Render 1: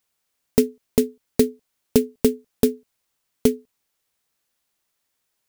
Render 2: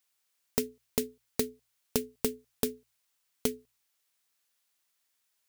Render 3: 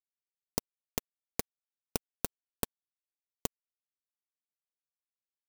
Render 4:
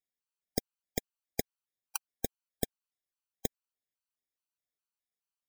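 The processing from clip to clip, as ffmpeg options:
-af "tiltshelf=f=770:g=-5.5,bandreject=f=60:t=h:w=6,bandreject=f=120:t=h:w=6,acompressor=threshold=-18dB:ratio=6,volume=-6.5dB"
-af "acrusher=bits=2:mix=0:aa=0.5,volume=-2dB"
-af "afftfilt=real='re*gt(sin(2*PI*2.4*pts/sr)*(1-2*mod(floor(b*sr/1024/800),2)),0)':imag='im*gt(sin(2*PI*2.4*pts/sr)*(1-2*mod(floor(b*sr/1024/800),2)),0)':win_size=1024:overlap=0.75,volume=2.5dB"

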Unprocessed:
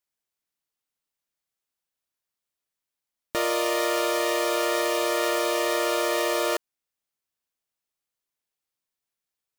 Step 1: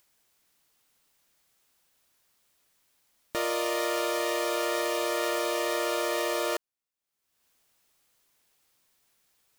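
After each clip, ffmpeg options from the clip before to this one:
-af "acompressor=mode=upward:threshold=-48dB:ratio=2.5,volume=-4dB"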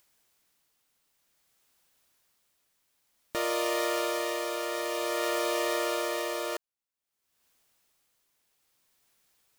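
-af "tremolo=f=0.54:d=0.39"

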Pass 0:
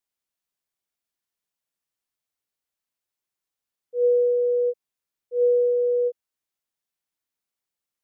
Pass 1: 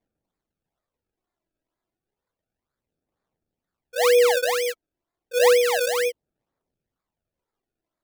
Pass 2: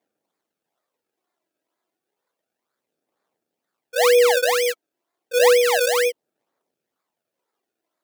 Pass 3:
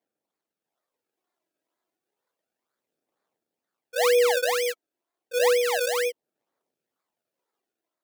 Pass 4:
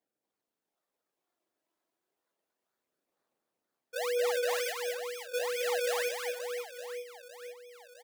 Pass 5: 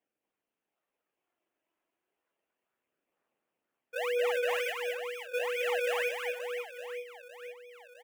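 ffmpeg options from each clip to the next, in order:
-af "acrusher=samples=30:mix=1:aa=0.000001:lfo=1:lforange=30:lforate=2.1,aphaser=in_gain=1:out_gain=1:delay=3.1:decay=0.42:speed=0.31:type=sinusoidal"
-filter_complex "[0:a]asplit=2[a][b];[b]acompressor=threshold=-25dB:ratio=6,volume=0.5dB[c];[a][c]amix=inputs=2:normalize=0,highpass=320"
-af "dynaudnorm=f=510:g=3:m=4dB,volume=-7.5dB"
-filter_complex "[0:a]alimiter=limit=-20.5dB:level=0:latency=1:release=151,asplit=2[a][b];[b]aecho=0:1:230|529|917.7|1423|2080:0.631|0.398|0.251|0.158|0.1[c];[a][c]amix=inputs=2:normalize=0,volume=-3.5dB"
-af "highshelf=f=3.4k:t=q:w=3:g=-6.5"

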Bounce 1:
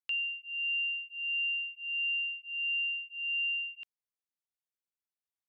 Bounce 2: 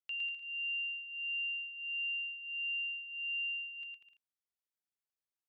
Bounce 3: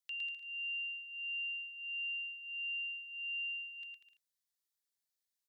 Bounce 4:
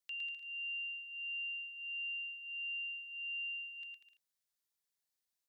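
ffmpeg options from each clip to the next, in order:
-af "aecho=1:1:110|192.5|254.4|300.8|335.6:0.631|0.398|0.251|0.158|0.1,volume=-7dB"
-af "firequalizer=gain_entry='entry(1300,0);entry(1800,7);entry(2600,1);entry(3800,11)':delay=0.05:min_phase=1,volume=-5dB"
-filter_complex "[0:a]acrossover=split=3000[a][b];[b]acompressor=threshold=-49dB:ratio=4:attack=1:release=60[c];[a][c]amix=inputs=2:normalize=0"

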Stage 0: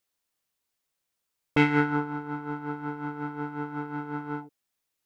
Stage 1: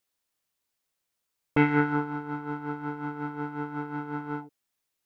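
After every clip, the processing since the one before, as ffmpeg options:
-filter_complex "[0:a]acrossover=split=2500[a][b];[b]acompressor=threshold=-49dB:ratio=4:attack=1:release=60[c];[a][c]amix=inputs=2:normalize=0"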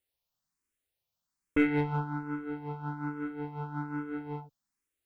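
-filter_complex "[0:a]lowshelf=f=190:g=9.5,asplit=2[a][b];[b]asoftclip=type=hard:threshold=-18dB,volume=-4.5dB[c];[a][c]amix=inputs=2:normalize=0,asplit=2[d][e];[e]afreqshift=1.2[f];[d][f]amix=inputs=2:normalize=1,volume=-6.5dB"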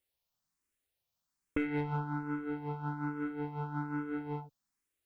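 -af "acompressor=threshold=-30dB:ratio=6"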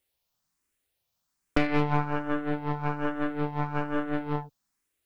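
-af "aeval=exprs='0.0891*(cos(1*acos(clip(val(0)/0.0891,-1,1)))-cos(1*PI/2))+0.0398*(cos(4*acos(clip(val(0)/0.0891,-1,1)))-cos(4*PI/2))':c=same,volume=6dB"

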